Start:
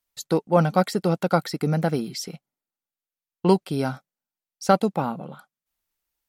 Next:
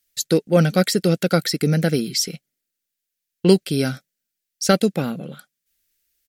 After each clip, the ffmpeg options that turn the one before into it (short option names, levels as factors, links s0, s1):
-af "firequalizer=gain_entry='entry(490,0);entry(920,-17);entry(1600,3);entry(5400,7)':delay=0.05:min_phase=1,volume=1.68"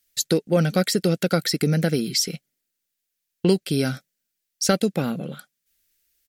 -af "acompressor=threshold=0.0891:ratio=2,volume=1.19"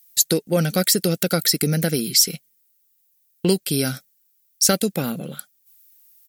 -af "aemphasis=mode=production:type=50fm"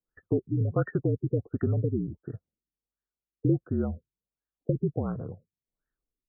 -af "afreqshift=-49,afftfilt=real='re*lt(b*sr/1024,400*pow(1900/400,0.5+0.5*sin(2*PI*1.4*pts/sr)))':imag='im*lt(b*sr/1024,400*pow(1900/400,0.5+0.5*sin(2*PI*1.4*pts/sr)))':win_size=1024:overlap=0.75,volume=0.562"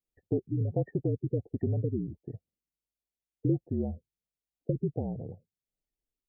-af "asuperstop=centerf=1300:order=12:qfactor=1.2,volume=0.708"